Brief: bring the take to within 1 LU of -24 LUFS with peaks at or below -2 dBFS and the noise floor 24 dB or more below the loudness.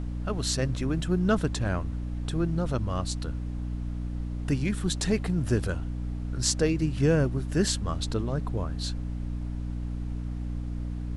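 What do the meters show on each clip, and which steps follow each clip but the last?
hum 60 Hz; highest harmonic 300 Hz; hum level -30 dBFS; noise floor -33 dBFS; noise floor target -54 dBFS; loudness -29.5 LUFS; peak level -8.5 dBFS; loudness target -24.0 LUFS
-> hum notches 60/120/180/240/300 Hz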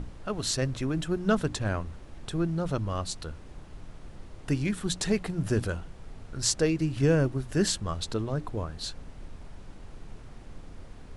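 hum not found; noise floor -47 dBFS; noise floor target -54 dBFS
-> noise print and reduce 7 dB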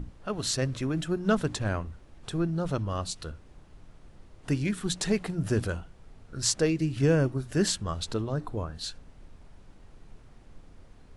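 noise floor -54 dBFS; loudness -29.5 LUFS; peak level -9.0 dBFS; loudness target -24.0 LUFS
-> trim +5.5 dB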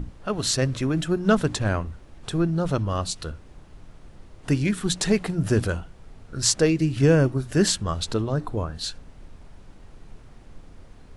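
loudness -24.0 LUFS; peak level -3.5 dBFS; noise floor -48 dBFS

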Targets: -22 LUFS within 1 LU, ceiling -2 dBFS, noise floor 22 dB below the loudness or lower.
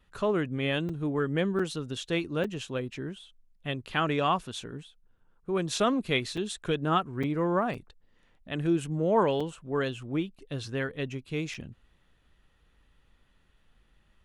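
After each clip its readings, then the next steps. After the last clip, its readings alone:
dropouts 8; longest dropout 5.0 ms; loudness -30.0 LUFS; peak level -12.5 dBFS; loudness target -22.0 LUFS
-> interpolate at 0.89/1.59/2.44/6.37/7.23/7.74/9.40/11.54 s, 5 ms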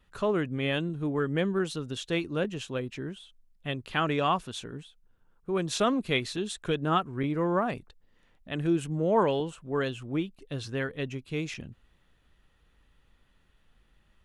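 dropouts 0; loudness -30.0 LUFS; peak level -12.5 dBFS; loudness target -22.0 LUFS
-> trim +8 dB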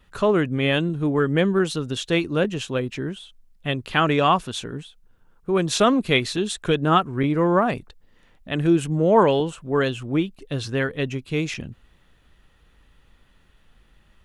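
loudness -22.0 LUFS; peak level -4.5 dBFS; noise floor -58 dBFS

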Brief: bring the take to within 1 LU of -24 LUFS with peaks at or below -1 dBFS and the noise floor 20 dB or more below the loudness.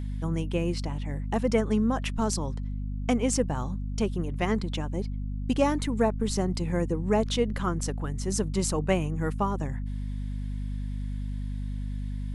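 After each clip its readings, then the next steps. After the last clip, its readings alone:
hum 50 Hz; highest harmonic 250 Hz; hum level -29 dBFS; loudness -29.0 LUFS; peak level -10.5 dBFS; loudness target -24.0 LUFS
-> de-hum 50 Hz, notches 5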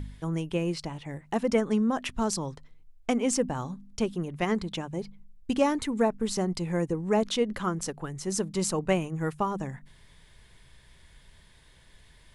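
hum not found; loudness -29.5 LUFS; peak level -11.0 dBFS; loudness target -24.0 LUFS
-> trim +5.5 dB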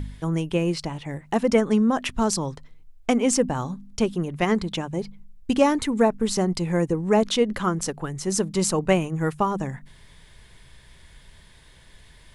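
loudness -24.0 LUFS; peak level -5.5 dBFS; noise floor -51 dBFS

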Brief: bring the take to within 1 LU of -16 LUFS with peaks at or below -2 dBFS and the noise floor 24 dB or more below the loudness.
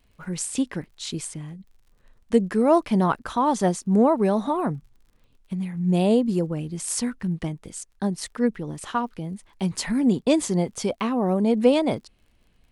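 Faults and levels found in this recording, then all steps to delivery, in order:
tick rate 47 per s; loudness -24.0 LUFS; peak level -5.5 dBFS; loudness target -16.0 LUFS
-> de-click; trim +8 dB; peak limiter -2 dBFS

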